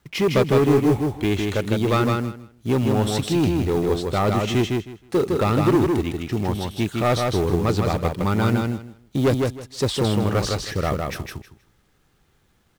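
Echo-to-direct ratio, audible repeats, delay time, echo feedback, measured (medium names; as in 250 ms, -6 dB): -3.5 dB, 3, 158 ms, 19%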